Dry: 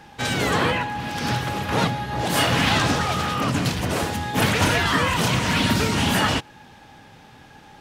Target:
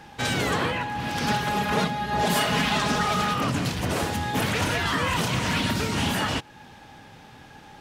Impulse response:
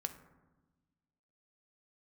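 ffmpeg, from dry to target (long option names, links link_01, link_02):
-filter_complex "[0:a]alimiter=limit=-15dB:level=0:latency=1:release=384,asettb=1/sr,asplit=3[link_01][link_02][link_03];[link_01]atrim=end=1.274[link_04];[link_02]atrim=start=1.27:end=3.34,asetpts=PTS-STARTPTS,afade=type=in:duration=0.004:curve=qsin,afade=type=out:start_time=2.066:duration=0.004:curve=qsin,aecho=1:1:4.8:0.7,atrim=end_sample=91287[link_05];[link_03]atrim=start=3.336[link_06];[link_04][link_05]acrossfade=duration=0.004:curve1=hsin:curve2=qsin[link_07];[link_07][link_06]acrossfade=duration=0.004:curve1=qsin:curve2=hsin"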